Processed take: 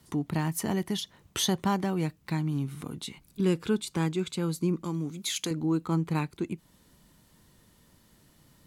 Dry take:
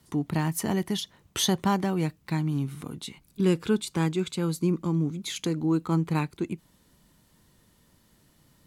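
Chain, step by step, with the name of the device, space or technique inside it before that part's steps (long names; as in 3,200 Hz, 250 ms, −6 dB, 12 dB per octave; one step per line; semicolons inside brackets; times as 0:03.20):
0:04.84–0:05.51: spectral tilt +2 dB per octave
parallel compression (in parallel at −2.5 dB: downward compressor, threshold −38 dBFS, peak gain reduction 18.5 dB)
on the sum: level −3.5 dB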